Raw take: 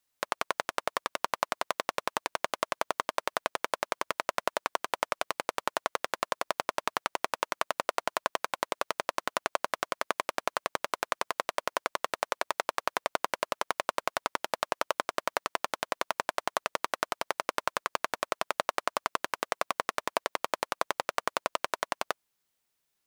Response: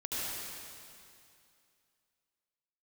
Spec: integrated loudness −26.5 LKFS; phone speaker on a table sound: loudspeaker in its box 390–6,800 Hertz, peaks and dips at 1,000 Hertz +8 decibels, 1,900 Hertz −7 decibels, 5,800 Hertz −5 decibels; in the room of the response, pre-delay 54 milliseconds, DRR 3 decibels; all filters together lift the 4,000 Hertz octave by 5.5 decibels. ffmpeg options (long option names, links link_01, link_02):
-filter_complex "[0:a]equalizer=frequency=4000:width_type=o:gain=8,asplit=2[link_01][link_02];[1:a]atrim=start_sample=2205,adelay=54[link_03];[link_02][link_03]afir=irnorm=-1:irlink=0,volume=-8dB[link_04];[link_01][link_04]amix=inputs=2:normalize=0,highpass=frequency=390:width=0.5412,highpass=frequency=390:width=1.3066,equalizer=frequency=1000:width_type=q:width=4:gain=8,equalizer=frequency=1900:width_type=q:width=4:gain=-7,equalizer=frequency=5800:width_type=q:width=4:gain=-5,lowpass=frequency=6800:width=0.5412,lowpass=frequency=6800:width=1.3066,volume=1.5dB"